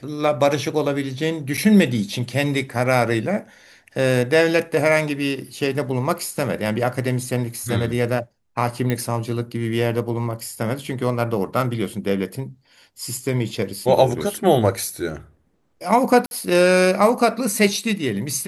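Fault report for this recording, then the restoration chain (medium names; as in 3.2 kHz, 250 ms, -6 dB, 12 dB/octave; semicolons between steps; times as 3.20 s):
1.57–1.58 s: dropout 6.7 ms
8.90 s: pop -10 dBFS
16.26–16.31 s: dropout 51 ms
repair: de-click; interpolate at 1.57 s, 6.7 ms; interpolate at 16.26 s, 51 ms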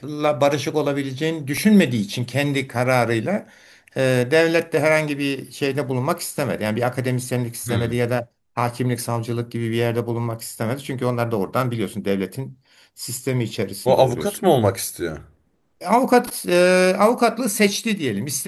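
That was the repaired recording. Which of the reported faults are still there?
nothing left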